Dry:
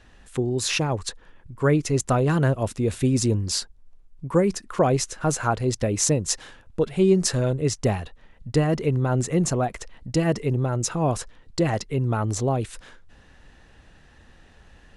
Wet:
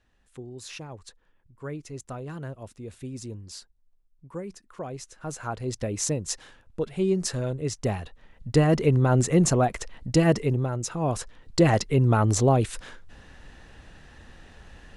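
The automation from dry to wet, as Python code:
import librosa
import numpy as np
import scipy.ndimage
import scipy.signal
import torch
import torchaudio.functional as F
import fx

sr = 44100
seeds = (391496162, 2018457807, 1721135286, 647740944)

y = fx.gain(x, sr, db=fx.line((4.94, -16.0), (5.77, -6.0), (7.68, -6.0), (8.73, 2.0), (10.32, 2.0), (10.85, -6.0), (11.64, 3.5)))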